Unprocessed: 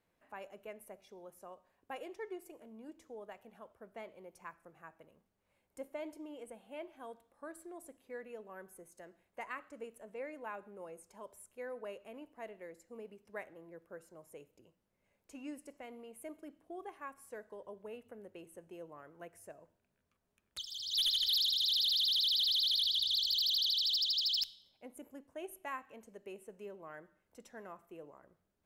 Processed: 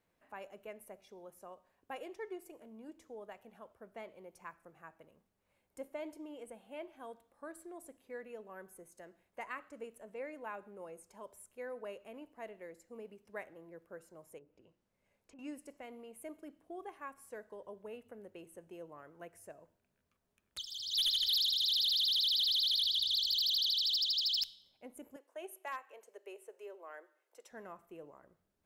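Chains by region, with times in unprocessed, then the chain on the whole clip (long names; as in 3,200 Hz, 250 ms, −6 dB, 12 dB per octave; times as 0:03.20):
0:14.38–0:15.39: mains-hum notches 60/120/180/240/300/360 Hz + treble cut that deepens with the level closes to 1,000 Hz, closed at −54 dBFS + downward compressor 3 to 1, threshold −57 dBFS
0:25.16–0:27.51: Butterworth high-pass 370 Hz + hard clipping −33 dBFS
whole clip: no processing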